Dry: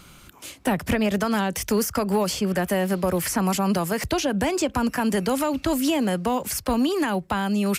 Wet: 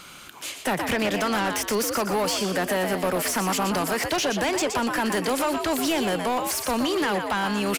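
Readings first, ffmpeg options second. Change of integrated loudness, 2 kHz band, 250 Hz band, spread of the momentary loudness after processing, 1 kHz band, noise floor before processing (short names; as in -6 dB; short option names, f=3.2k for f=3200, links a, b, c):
-0.5 dB, +3.0 dB, -4.0 dB, 2 LU, +1.5 dB, -49 dBFS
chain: -filter_complex "[0:a]asplit=5[a][b][c][d][e];[b]adelay=120,afreqshift=74,volume=-9dB[f];[c]adelay=240,afreqshift=148,volume=-18.6dB[g];[d]adelay=360,afreqshift=222,volume=-28.3dB[h];[e]adelay=480,afreqshift=296,volume=-37.9dB[i];[a][f][g][h][i]amix=inputs=5:normalize=0,asplit=2[j][k];[k]highpass=f=720:p=1,volume=18dB,asoftclip=type=tanh:threshold=-11.5dB[l];[j][l]amix=inputs=2:normalize=0,lowpass=f=7.4k:p=1,volume=-6dB,volume=-5dB"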